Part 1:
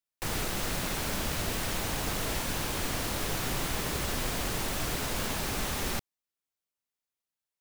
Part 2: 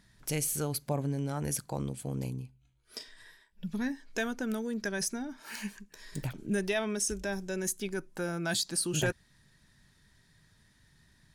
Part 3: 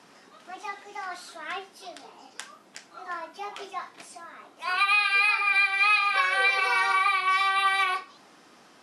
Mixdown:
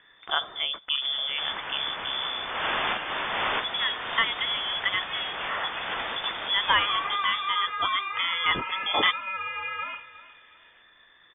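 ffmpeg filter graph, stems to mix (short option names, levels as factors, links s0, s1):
-filter_complex "[0:a]highpass=f=120:p=1,adelay=800,volume=1.26,asplit=2[s0][s1];[s1]volume=0.316[s2];[1:a]volume=1.33,asplit=2[s3][s4];[2:a]lowpass=f=1500:p=1,acompressor=threshold=0.02:ratio=1.5,adelay=2000,volume=0.335,asplit=2[s5][s6];[s6]volume=0.158[s7];[s4]apad=whole_len=370576[s8];[s0][s8]sidechaincompress=threshold=0.00224:ratio=4:attack=30:release=174[s9];[s2][s7]amix=inputs=2:normalize=0,aecho=0:1:361|722|1083|1444|1805:1|0.32|0.102|0.0328|0.0105[s10];[s9][s3][s5][s10]amix=inputs=4:normalize=0,equalizer=f=2600:w=0.86:g=13.5,lowpass=f=3100:t=q:w=0.5098,lowpass=f=3100:t=q:w=0.6013,lowpass=f=3100:t=q:w=0.9,lowpass=f=3100:t=q:w=2.563,afreqshift=-3600"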